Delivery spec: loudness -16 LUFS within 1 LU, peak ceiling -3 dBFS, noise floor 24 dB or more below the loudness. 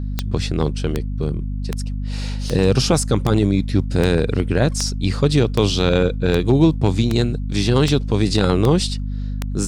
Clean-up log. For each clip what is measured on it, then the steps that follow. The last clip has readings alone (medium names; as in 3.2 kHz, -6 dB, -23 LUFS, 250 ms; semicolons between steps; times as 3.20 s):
clicks found 13; hum 50 Hz; highest harmonic 250 Hz; hum level -22 dBFS; loudness -19.0 LUFS; peak level -3.0 dBFS; loudness target -16.0 LUFS
-> de-click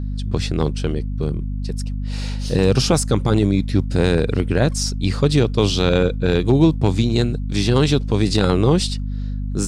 clicks found 0; hum 50 Hz; highest harmonic 250 Hz; hum level -22 dBFS
-> hum notches 50/100/150/200/250 Hz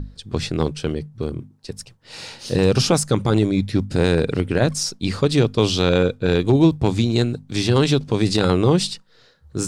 hum not found; loudness -19.5 LUFS; peak level -4.5 dBFS; loudness target -16.0 LUFS
-> trim +3.5 dB; peak limiter -3 dBFS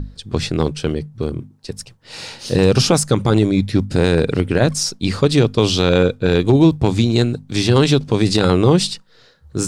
loudness -16.5 LUFS; peak level -3.0 dBFS; noise floor -50 dBFS